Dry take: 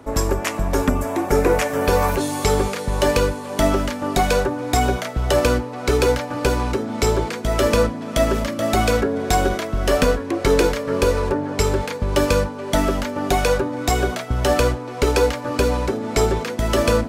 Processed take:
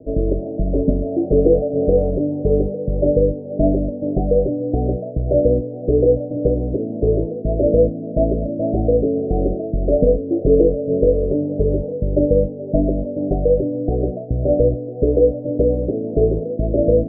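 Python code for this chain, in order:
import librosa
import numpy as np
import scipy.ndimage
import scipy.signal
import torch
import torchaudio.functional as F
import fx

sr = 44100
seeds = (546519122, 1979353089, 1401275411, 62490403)

y = scipy.signal.sosfilt(scipy.signal.butter(12, 650.0, 'lowpass', fs=sr, output='sos'), x)
y = y + 0.42 * np.pad(y, (int(6.4 * sr / 1000.0), 0))[:len(y)]
y = y * librosa.db_to_amplitude(2.5)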